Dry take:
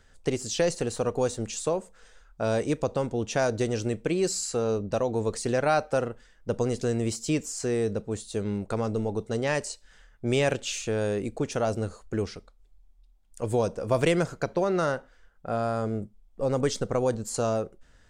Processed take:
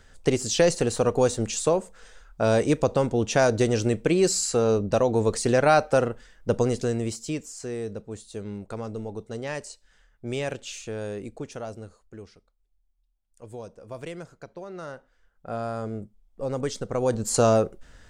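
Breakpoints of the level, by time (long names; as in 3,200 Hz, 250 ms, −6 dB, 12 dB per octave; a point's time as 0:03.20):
0:06.52 +5 dB
0:07.48 −5.5 dB
0:11.28 −5.5 dB
0:12.17 −14 dB
0:14.67 −14 dB
0:15.53 −3 dB
0:16.87 −3 dB
0:17.32 +7.5 dB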